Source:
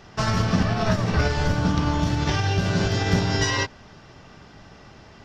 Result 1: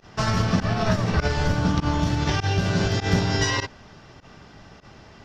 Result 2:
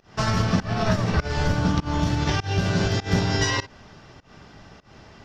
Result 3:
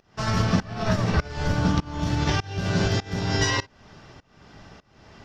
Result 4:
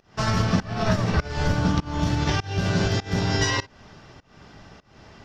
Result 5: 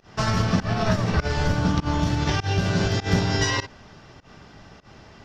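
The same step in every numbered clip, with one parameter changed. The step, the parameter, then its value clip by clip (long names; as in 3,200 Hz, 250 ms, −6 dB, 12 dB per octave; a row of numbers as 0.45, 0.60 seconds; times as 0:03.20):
fake sidechain pumping, release: 67, 194, 490, 323, 130 milliseconds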